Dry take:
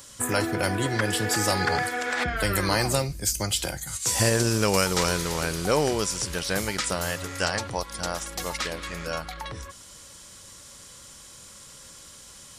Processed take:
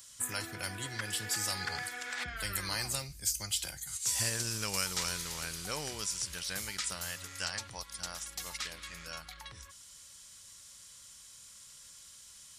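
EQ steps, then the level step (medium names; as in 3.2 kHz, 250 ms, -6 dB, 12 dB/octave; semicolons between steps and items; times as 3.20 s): amplifier tone stack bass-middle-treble 5-5-5; 0.0 dB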